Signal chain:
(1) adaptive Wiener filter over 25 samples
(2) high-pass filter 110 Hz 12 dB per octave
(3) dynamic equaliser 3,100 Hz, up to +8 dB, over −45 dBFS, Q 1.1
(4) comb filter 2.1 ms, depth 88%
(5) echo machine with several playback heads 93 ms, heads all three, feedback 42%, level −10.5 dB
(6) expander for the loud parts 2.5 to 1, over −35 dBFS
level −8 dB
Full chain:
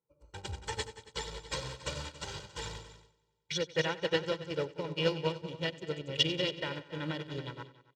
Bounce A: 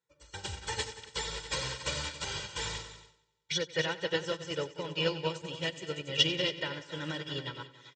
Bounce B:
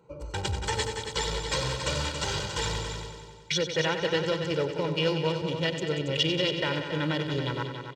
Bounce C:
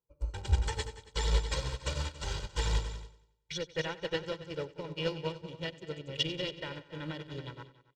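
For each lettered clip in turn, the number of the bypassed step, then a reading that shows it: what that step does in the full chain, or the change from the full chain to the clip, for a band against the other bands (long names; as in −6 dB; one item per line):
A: 1, 8 kHz band +5.0 dB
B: 6, change in crest factor −5.5 dB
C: 2, 125 Hz band +7.0 dB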